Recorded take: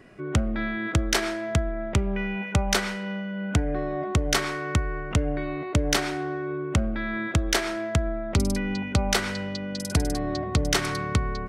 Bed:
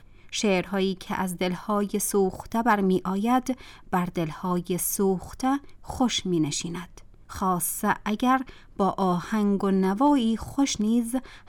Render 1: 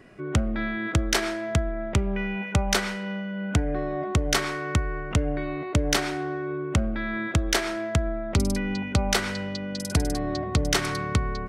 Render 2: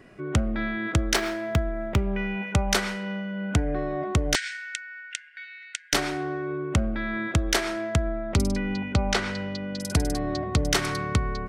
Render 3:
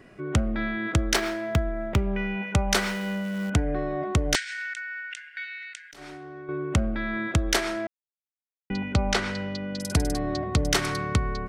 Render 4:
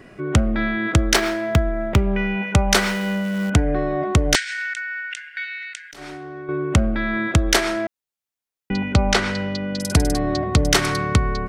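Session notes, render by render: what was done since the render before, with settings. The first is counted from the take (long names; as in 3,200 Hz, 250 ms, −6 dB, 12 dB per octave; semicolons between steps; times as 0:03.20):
no processing that can be heard
0:01.16–0:02.09: running median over 5 samples; 0:04.35–0:05.93: linear-phase brick-wall band-pass 1,400–9,300 Hz; 0:08.48–0:09.81: high-frequency loss of the air 67 metres
0:02.76–0:03.50: converter with a step at zero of −36 dBFS; 0:04.42–0:06.49: compressor whose output falls as the input rises −38 dBFS; 0:07.87–0:08.70: silence
level +6.5 dB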